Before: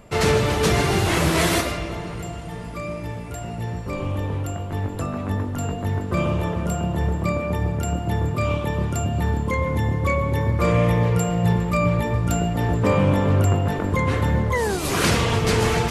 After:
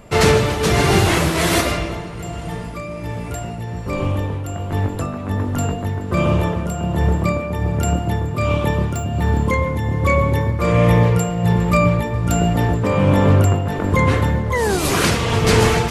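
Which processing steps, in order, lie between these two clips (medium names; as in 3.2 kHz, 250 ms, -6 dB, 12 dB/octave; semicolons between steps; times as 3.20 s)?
8.83–9.41 s: median filter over 3 samples; tremolo triangle 1.3 Hz, depth 55%; trim +6.5 dB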